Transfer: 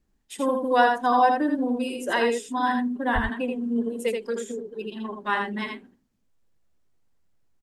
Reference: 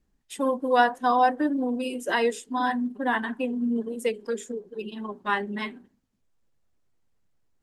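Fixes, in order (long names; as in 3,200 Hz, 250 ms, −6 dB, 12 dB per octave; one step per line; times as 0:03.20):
0:03.14–0:03.26: high-pass filter 140 Hz 24 dB per octave
echo removal 81 ms −4.5 dB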